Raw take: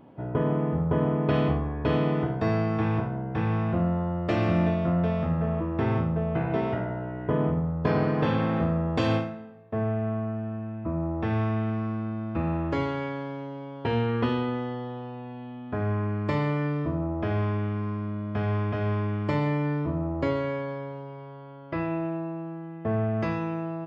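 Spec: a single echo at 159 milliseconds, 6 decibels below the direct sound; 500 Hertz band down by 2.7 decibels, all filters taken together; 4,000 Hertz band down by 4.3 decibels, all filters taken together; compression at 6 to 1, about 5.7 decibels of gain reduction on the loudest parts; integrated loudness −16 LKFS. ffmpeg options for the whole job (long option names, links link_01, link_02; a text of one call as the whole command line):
ffmpeg -i in.wav -af "equalizer=frequency=500:width_type=o:gain=-3.5,equalizer=frequency=4000:width_type=o:gain=-6,acompressor=threshold=-27dB:ratio=6,aecho=1:1:159:0.501,volume=15.5dB" out.wav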